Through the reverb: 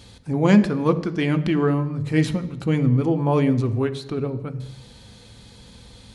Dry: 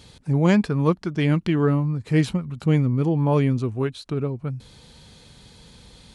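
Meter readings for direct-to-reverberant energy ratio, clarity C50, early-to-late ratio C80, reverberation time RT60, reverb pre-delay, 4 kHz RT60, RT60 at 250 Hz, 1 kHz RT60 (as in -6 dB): 8.5 dB, 14.0 dB, 16.0 dB, 0.85 s, 3 ms, 0.85 s, 0.85 s, 0.85 s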